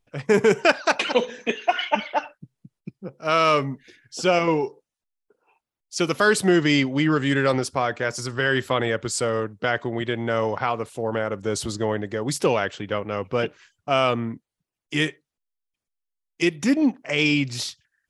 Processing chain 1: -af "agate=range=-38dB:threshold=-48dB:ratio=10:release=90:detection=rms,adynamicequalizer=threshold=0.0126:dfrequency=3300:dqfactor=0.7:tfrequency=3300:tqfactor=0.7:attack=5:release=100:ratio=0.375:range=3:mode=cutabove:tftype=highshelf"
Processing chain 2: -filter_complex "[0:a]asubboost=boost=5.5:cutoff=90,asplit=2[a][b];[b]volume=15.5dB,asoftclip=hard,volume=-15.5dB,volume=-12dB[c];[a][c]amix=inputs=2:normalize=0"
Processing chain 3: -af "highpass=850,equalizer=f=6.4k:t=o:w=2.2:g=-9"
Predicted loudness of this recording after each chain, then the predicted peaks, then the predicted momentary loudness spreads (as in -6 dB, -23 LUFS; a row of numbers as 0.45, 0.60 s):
-23.5, -22.0, -29.5 LUFS; -4.0, -3.5, -8.0 dBFS; 10, 10, 12 LU